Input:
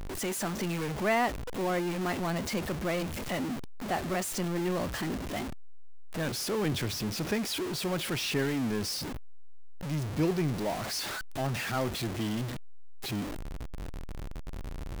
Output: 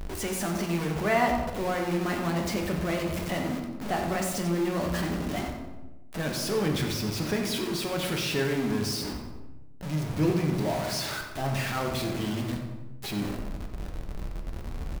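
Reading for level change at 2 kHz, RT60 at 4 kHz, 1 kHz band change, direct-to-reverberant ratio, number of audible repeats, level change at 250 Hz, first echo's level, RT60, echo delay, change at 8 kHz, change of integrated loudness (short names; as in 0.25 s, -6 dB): +2.5 dB, 0.70 s, +3.0 dB, 1.0 dB, 2, +3.5 dB, -9.5 dB, 1.1 s, 91 ms, +1.5 dB, +2.5 dB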